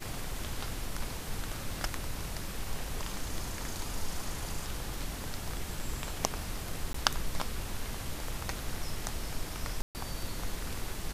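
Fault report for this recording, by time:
6.93–6.94 gap 14 ms
9.82–9.95 gap 0.129 s

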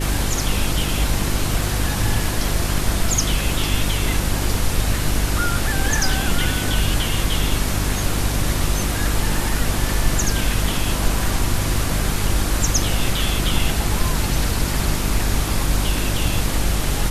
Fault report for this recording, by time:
hum 50 Hz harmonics 7 -24 dBFS

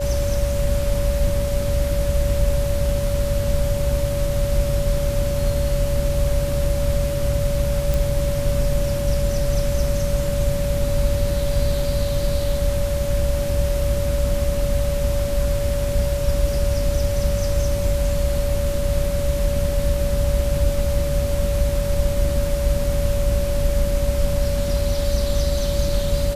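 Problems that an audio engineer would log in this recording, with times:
tone 570 Hz -24 dBFS
7.94 pop

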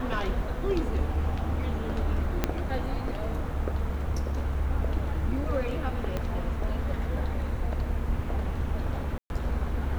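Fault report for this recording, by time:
2.44 pop -10 dBFS
6.17 pop -17 dBFS
9.18–9.3 gap 0.121 s

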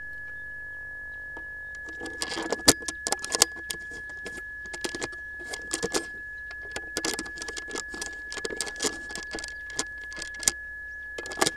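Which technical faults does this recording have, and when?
tone 1700 Hz -36 dBFS

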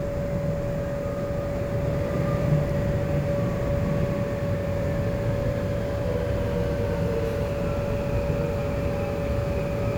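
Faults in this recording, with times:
tone 570 Hz -29 dBFS

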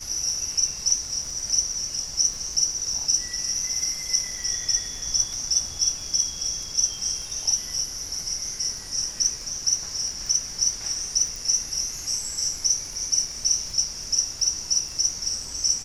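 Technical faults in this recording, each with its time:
crackle 11/s -30 dBFS
11.36 pop

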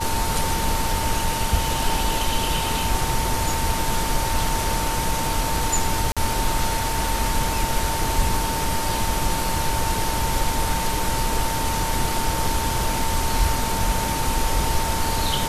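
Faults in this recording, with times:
tone 900 Hz -27 dBFS
6.12–6.17 gap 46 ms

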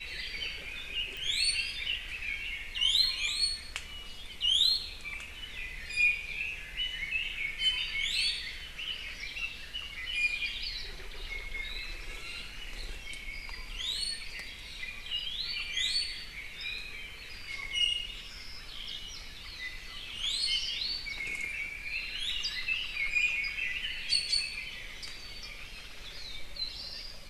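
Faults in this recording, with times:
1.17 pop

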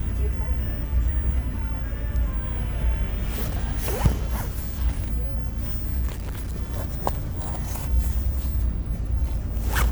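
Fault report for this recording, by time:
6.07–6.57 clipped -26 dBFS

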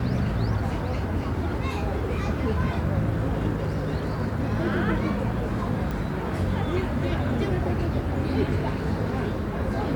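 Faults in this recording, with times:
5.91 pop

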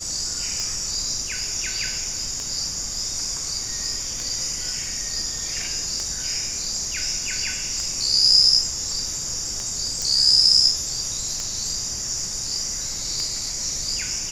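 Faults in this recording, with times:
tick 33 1/3 rpm -14 dBFS
10.02 pop

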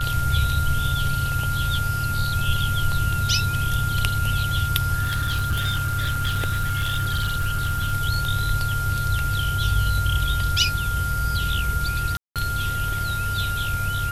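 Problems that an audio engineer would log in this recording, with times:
tone 1400 Hz -26 dBFS
5.02–7.93 clipped -18.5 dBFS
12.17–12.36 gap 0.187 s

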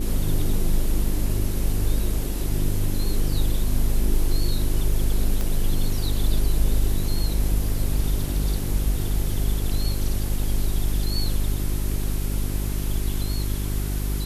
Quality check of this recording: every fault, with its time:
hum 50 Hz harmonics 8 -26 dBFS
5.41 pop -13 dBFS

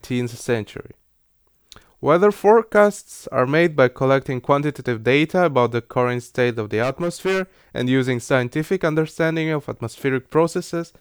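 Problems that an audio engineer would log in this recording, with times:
6.82–7.42 clipped -17 dBFS

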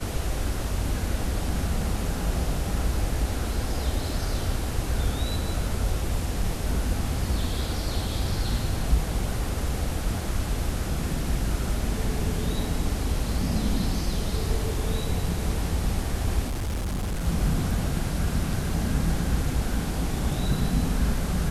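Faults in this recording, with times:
16.48–17.27 clipped -25 dBFS

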